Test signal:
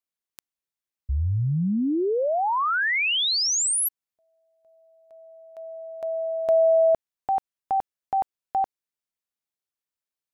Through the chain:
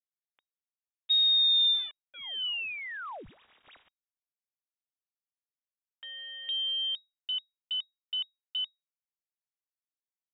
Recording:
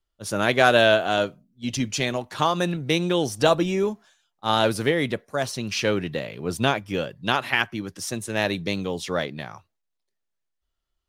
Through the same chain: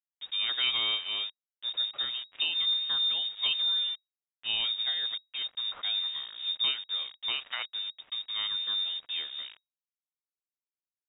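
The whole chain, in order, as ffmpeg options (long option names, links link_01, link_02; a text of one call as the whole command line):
ffmpeg -i in.wav -af "firequalizer=gain_entry='entry(200,0);entry(320,-25);entry(800,-8);entry(1500,-15)':delay=0.05:min_phase=1,aeval=exprs='val(0)*gte(abs(val(0)),0.00944)':channel_layout=same,lowpass=frequency=3200:width_type=q:width=0.5098,lowpass=frequency=3200:width_type=q:width=0.6013,lowpass=frequency=3200:width_type=q:width=0.9,lowpass=frequency=3200:width_type=q:width=2.563,afreqshift=-3800" out.wav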